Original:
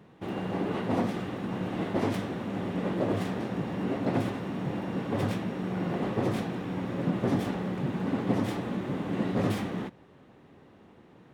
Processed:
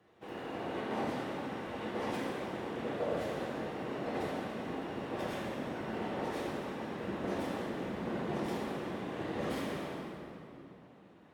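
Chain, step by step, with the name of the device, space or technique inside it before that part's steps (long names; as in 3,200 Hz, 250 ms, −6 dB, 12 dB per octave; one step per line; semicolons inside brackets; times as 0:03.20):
whispering ghost (random phases in short frames; high-pass filter 500 Hz 6 dB per octave; convolution reverb RT60 2.9 s, pre-delay 3 ms, DRR −5 dB)
level −8.5 dB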